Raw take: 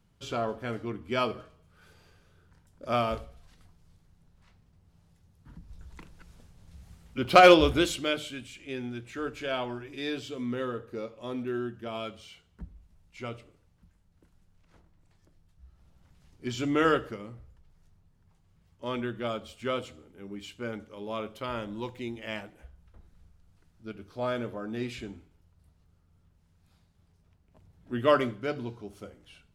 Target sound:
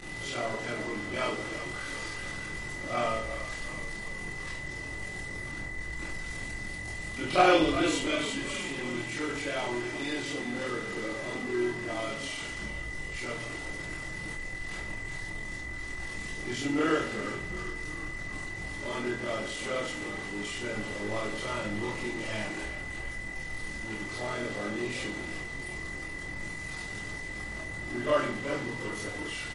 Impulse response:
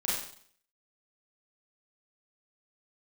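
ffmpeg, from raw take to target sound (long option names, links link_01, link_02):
-filter_complex "[0:a]aeval=exprs='val(0)+0.5*0.0355*sgn(val(0))':channel_layout=same,aeval=exprs='val(0)+0.0141*sin(2*PI*2000*n/s)':channel_layout=same,tremolo=f=42:d=0.667,asettb=1/sr,asplit=3[link_01][link_02][link_03];[link_01]atrim=end=20.444[link_04];[link_02]atrim=start=20.44:end=22.44,asetpts=PTS-STARTPTS,afade=type=in:duration=0.004:curve=qsin,afade=type=out:start_time=1.996:duration=0.004:curve=qsin,lowshelf=frequency=93:gain=8[link_05];[link_03]atrim=start=22.436[link_06];[link_04][link_05]acrossfade=duration=0.004:curve1=hsin:curve2=qsin[link_07];[link_07][link_06]acrossfade=duration=0.004:curve1=qsin:curve2=hsin,bandreject=frequency=50:width_type=h:width=6,bandreject=frequency=100:width_type=h:width=6,bandreject=frequency=150:width_type=h:width=6,bandreject=frequency=200:width_type=h:width=6,bandreject=frequency=250:width_type=h:width=6,asplit=8[link_08][link_09][link_10][link_11][link_12][link_13][link_14][link_15];[link_09]adelay=365,afreqshift=-50,volume=-12dB[link_16];[link_10]adelay=730,afreqshift=-100,volume=-16.2dB[link_17];[link_11]adelay=1095,afreqshift=-150,volume=-20.3dB[link_18];[link_12]adelay=1460,afreqshift=-200,volume=-24.5dB[link_19];[link_13]adelay=1825,afreqshift=-250,volume=-28.6dB[link_20];[link_14]adelay=2190,afreqshift=-300,volume=-32.8dB[link_21];[link_15]adelay=2555,afreqshift=-350,volume=-36.9dB[link_22];[link_08][link_16][link_17][link_18][link_19][link_20][link_21][link_22]amix=inputs=8:normalize=0[link_23];[1:a]atrim=start_sample=2205,asetrate=70560,aresample=44100[link_24];[link_23][link_24]afir=irnorm=-1:irlink=0,asoftclip=type=tanh:threshold=-6.5dB,volume=-4.5dB" -ar 44100 -c:a libmp3lame -b:a 48k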